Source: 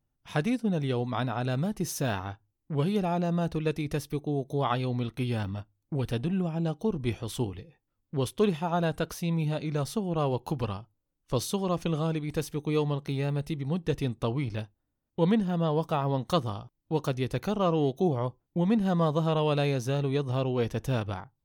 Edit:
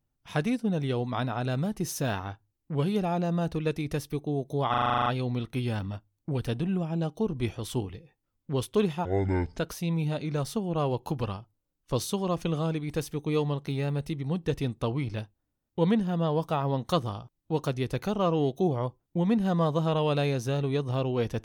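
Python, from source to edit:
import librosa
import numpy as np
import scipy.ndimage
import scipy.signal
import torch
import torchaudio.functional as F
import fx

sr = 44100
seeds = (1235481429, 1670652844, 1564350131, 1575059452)

y = fx.edit(x, sr, fx.stutter(start_s=4.7, slice_s=0.04, count=10),
    fx.speed_span(start_s=8.69, length_s=0.3, speed=0.56), tone=tone)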